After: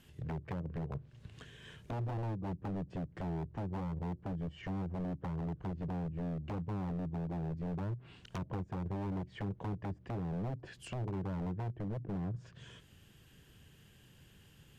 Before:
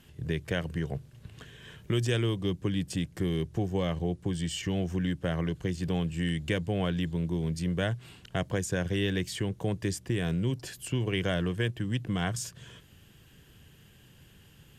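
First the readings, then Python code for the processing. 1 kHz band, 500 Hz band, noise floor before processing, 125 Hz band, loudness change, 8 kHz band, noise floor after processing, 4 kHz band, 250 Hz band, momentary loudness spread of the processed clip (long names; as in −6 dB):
−3.5 dB, −11.5 dB, −57 dBFS, −7.5 dB, −8.5 dB, below −20 dB, −61 dBFS, −20.0 dB, −8.5 dB, 8 LU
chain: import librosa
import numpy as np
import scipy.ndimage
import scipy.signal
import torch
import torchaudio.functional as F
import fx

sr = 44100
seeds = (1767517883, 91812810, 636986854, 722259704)

y = fx.env_lowpass_down(x, sr, base_hz=400.0, full_db=-26.5)
y = 10.0 ** (-28.0 / 20.0) * (np.abs((y / 10.0 ** (-28.0 / 20.0) + 3.0) % 4.0 - 2.0) - 1.0)
y = F.gain(torch.from_numpy(y), -4.5).numpy()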